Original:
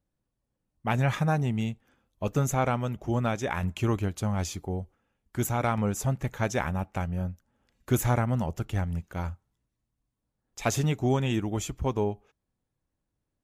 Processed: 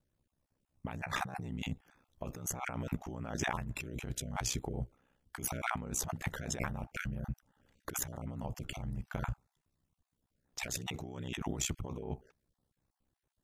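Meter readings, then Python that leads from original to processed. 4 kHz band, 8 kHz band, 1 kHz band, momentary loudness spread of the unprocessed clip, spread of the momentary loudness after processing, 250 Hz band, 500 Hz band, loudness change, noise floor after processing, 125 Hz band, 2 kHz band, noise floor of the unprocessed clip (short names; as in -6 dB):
-3.0 dB, -1.5 dB, -10.0 dB, 10 LU, 10 LU, -12.0 dB, -14.0 dB, -10.0 dB, under -85 dBFS, -13.0 dB, -5.5 dB, -83 dBFS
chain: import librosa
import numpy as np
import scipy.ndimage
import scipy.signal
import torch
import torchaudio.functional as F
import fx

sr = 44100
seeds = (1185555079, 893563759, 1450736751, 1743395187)

y = fx.spec_dropout(x, sr, seeds[0], share_pct=20)
y = fx.over_compress(y, sr, threshold_db=-35.0, ratio=-1.0)
y = y * np.sin(2.0 * np.pi * 32.0 * np.arange(len(y)) / sr)
y = y * 10.0 ** (-1.0 / 20.0)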